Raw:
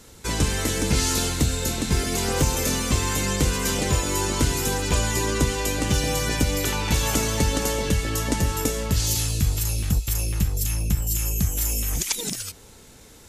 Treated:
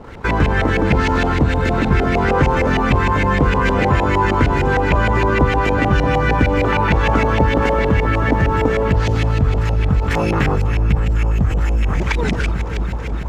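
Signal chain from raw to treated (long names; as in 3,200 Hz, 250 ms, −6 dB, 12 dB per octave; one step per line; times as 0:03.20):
0:10.09–0:10.55: ceiling on every frequency bin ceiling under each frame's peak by 19 dB
delay that swaps between a low-pass and a high-pass 164 ms, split 1,500 Hz, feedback 89%, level −13 dB
auto-filter low-pass saw up 6.5 Hz 700–2,400 Hz
in parallel at −2 dB: compressor whose output falls as the input rises −31 dBFS, ratio −1
on the sum: dead-zone distortion −53 dBFS
level +5.5 dB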